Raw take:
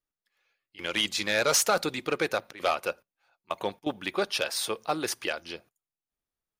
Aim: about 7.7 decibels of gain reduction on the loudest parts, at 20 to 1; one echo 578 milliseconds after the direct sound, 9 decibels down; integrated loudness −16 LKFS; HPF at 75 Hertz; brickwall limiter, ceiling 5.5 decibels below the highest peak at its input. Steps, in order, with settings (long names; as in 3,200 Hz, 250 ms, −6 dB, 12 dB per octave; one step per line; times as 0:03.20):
high-pass filter 75 Hz
downward compressor 20 to 1, threshold −27 dBFS
brickwall limiter −22.5 dBFS
single-tap delay 578 ms −9 dB
level +19 dB